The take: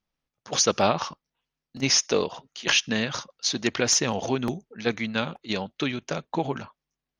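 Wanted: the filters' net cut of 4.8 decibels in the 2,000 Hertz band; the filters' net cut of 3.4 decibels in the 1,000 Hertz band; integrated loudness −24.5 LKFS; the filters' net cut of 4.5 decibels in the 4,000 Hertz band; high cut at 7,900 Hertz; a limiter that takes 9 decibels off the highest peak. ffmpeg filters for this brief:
ffmpeg -i in.wav -af "lowpass=7900,equalizer=frequency=1000:width_type=o:gain=-3.5,equalizer=frequency=2000:width_type=o:gain=-4,equalizer=frequency=4000:width_type=o:gain=-4.5,volume=7.5dB,alimiter=limit=-11.5dB:level=0:latency=1" out.wav

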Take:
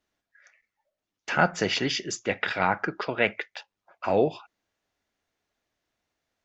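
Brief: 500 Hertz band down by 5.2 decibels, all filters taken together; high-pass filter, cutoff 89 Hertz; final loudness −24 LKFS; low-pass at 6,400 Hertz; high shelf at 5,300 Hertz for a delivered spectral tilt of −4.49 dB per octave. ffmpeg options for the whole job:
ffmpeg -i in.wav -af "highpass=89,lowpass=6400,equalizer=frequency=500:width_type=o:gain=-6.5,highshelf=frequency=5300:gain=-7.5,volume=5dB" out.wav

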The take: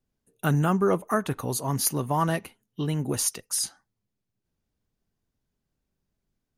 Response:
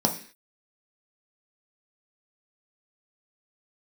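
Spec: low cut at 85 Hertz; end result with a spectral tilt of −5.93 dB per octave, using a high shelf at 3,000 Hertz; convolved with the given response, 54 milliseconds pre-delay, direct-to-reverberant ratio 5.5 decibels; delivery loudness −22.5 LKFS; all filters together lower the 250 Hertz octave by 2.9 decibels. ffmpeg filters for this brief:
-filter_complex "[0:a]highpass=85,equalizer=frequency=250:width_type=o:gain=-4.5,highshelf=frequency=3000:gain=-8,asplit=2[link_01][link_02];[1:a]atrim=start_sample=2205,adelay=54[link_03];[link_02][link_03]afir=irnorm=-1:irlink=0,volume=-17dB[link_04];[link_01][link_04]amix=inputs=2:normalize=0,volume=4dB"

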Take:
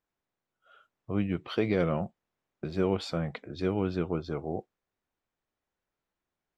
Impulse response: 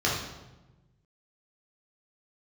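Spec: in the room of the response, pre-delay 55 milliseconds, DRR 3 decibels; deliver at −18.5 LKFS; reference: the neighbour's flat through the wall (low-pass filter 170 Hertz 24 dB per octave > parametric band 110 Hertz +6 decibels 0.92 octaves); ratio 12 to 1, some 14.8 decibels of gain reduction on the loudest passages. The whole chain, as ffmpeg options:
-filter_complex "[0:a]acompressor=threshold=-37dB:ratio=12,asplit=2[link_01][link_02];[1:a]atrim=start_sample=2205,adelay=55[link_03];[link_02][link_03]afir=irnorm=-1:irlink=0,volume=-16dB[link_04];[link_01][link_04]amix=inputs=2:normalize=0,lowpass=frequency=170:width=0.5412,lowpass=frequency=170:width=1.3066,equalizer=frequency=110:width_type=o:width=0.92:gain=6,volume=24dB"

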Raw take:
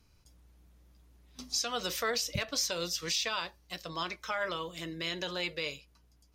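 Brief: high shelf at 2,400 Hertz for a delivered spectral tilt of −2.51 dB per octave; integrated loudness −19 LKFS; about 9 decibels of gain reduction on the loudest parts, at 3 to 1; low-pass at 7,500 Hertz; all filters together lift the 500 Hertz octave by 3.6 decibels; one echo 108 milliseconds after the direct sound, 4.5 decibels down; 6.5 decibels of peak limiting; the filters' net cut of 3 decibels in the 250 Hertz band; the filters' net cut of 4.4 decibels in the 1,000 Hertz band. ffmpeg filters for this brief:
ffmpeg -i in.wav -af "lowpass=7500,equalizer=frequency=250:width_type=o:gain=-8.5,equalizer=frequency=500:width_type=o:gain=8,equalizer=frequency=1000:width_type=o:gain=-7,highshelf=frequency=2400:gain=-4,acompressor=threshold=-40dB:ratio=3,alimiter=level_in=10dB:limit=-24dB:level=0:latency=1,volume=-10dB,aecho=1:1:108:0.596,volume=24dB" out.wav

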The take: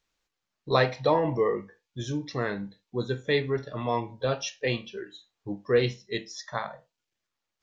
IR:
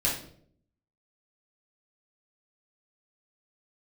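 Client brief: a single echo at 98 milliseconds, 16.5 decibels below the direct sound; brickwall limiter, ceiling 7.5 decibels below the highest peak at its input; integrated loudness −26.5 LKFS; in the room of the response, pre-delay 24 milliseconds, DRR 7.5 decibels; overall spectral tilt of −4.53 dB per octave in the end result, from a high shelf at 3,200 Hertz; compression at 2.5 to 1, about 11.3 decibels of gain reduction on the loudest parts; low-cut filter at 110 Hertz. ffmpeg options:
-filter_complex "[0:a]highpass=110,highshelf=frequency=3200:gain=6.5,acompressor=threshold=-34dB:ratio=2.5,alimiter=level_in=1.5dB:limit=-24dB:level=0:latency=1,volume=-1.5dB,aecho=1:1:98:0.15,asplit=2[link_01][link_02];[1:a]atrim=start_sample=2205,adelay=24[link_03];[link_02][link_03]afir=irnorm=-1:irlink=0,volume=-17dB[link_04];[link_01][link_04]amix=inputs=2:normalize=0,volume=10.5dB"

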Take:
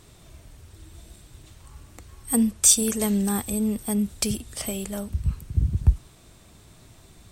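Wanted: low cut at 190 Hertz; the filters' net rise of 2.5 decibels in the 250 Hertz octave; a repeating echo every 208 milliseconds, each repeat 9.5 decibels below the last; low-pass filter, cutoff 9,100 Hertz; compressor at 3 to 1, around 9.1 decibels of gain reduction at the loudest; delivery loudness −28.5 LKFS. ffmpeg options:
ffmpeg -i in.wav -af "highpass=190,lowpass=9100,equalizer=frequency=250:width_type=o:gain=5.5,acompressor=threshold=-26dB:ratio=3,aecho=1:1:208|416|624|832:0.335|0.111|0.0365|0.012,volume=1dB" out.wav

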